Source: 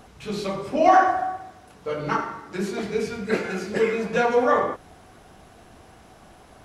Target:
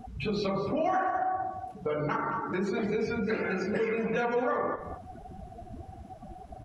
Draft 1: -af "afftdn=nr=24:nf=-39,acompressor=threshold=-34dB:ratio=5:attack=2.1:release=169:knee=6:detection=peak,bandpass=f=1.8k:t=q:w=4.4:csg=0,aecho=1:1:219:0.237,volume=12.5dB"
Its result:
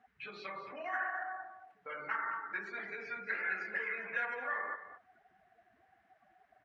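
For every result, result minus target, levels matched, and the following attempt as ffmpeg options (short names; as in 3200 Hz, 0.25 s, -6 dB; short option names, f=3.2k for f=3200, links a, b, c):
2000 Hz band +9.5 dB; compressor: peak gain reduction -5 dB
-af "afftdn=nr=24:nf=-39,acompressor=threshold=-34dB:ratio=5:attack=2.1:release=169:knee=6:detection=peak,aecho=1:1:219:0.237,volume=12.5dB"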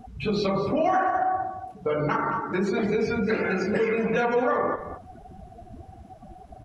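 compressor: peak gain reduction -5 dB
-af "afftdn=nr=24:nf=-39,acompressor=threshold=-40.5dB:ratio=5:attack=2.1:release=169:knee=6:detection=peak,aecho=1:1:219:0.237,volume=12.5dB"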